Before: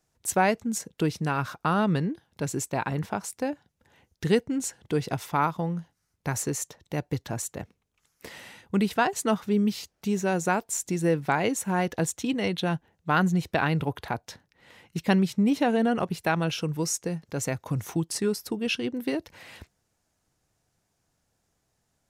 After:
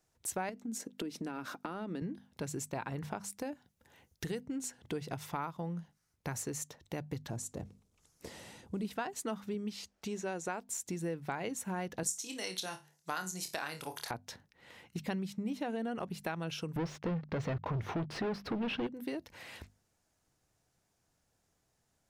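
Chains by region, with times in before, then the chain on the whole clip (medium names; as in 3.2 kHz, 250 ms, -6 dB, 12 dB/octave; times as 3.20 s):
0.49–2.02 s: resonant high-pass 270 Hz, resonance Q 3 + compression 5:1, threshold -28 dBFS + band-stop 1.1 kHz, Q 17
3.38–4.47 s: treble shelf 8.1 kHz +7.5 dB + compression 1.5:1, threshold -29 dBFS
7.30–8.85 s: companding laws mixed up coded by mu + low-pass 9.3 kHz + peaking EQ 2 kHz -12 dB 2.5 oct
9.54–10.69 s: low-pass 10 kHz + peaking EQ 150 Hz -8 dB 0.87 oct
12.03–14.11 s: high-pass 810 Hz 6 dB/octave + high-order bell 7.5 kHz +15 dB + flutter echo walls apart 4.6 m, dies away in 0.21 s
16.76–18.87 s: waveshaping leveller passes 5 + distance through air 330 m
whole clip: hum notches 50/100/150/200/250 Hz; compression 3:1, threshold -35 dBFS; trim -2.5 dB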